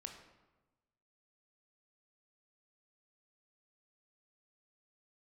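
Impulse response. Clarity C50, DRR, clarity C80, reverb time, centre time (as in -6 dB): 6.5 dB, 3.5 dB, 8.5 dB, 1.1 s, 28 ms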